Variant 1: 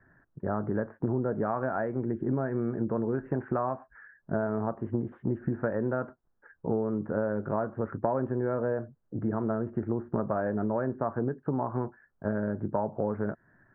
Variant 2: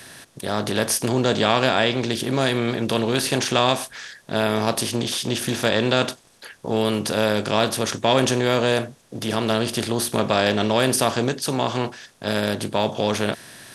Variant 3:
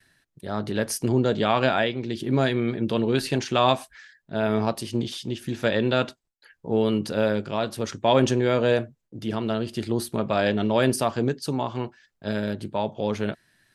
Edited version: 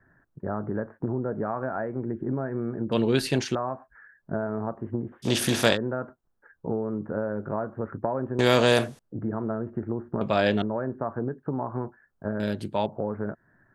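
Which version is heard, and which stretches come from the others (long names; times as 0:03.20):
1
0:02.92–0:03.55: punch in from 3
0:05.25–0:05.75: punch in from 2, crossfade 0.06 s
0:08.39–0:08.99: punch in from 2
0:10.21–0:10.62: punch in from 3
0:12.40–0:12.86: punch in from 3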